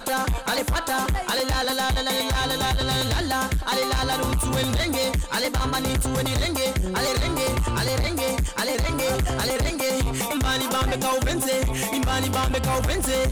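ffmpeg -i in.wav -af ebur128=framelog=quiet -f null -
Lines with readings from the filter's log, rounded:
Integrated loudness:
  I:         -23.6 LUFS
  Threshold: -33.6 LUFS
Loudness range:
  LRA:         0.8 LU
  Threshold: -43.6 LUFS
  LRA low:   -24.0 LUFS
  LRA high:  -23.2 LUFS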